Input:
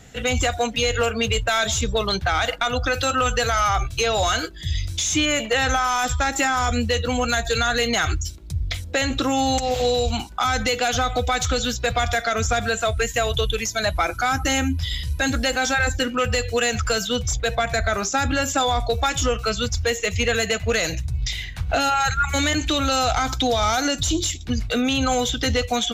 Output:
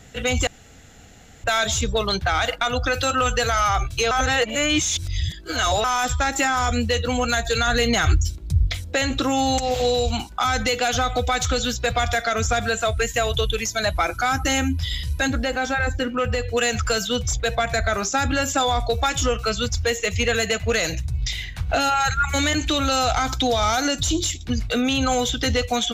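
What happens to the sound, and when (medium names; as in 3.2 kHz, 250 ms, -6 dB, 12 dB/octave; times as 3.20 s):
0.47–1.44 s: room tone
4.11–5.84 s: reverse
7.67–8.67 s: bass shelf 240 Hz +7.5 dB
15.27–16.57 s: peaking EQ 10 kHz -11 dB 2.8 oct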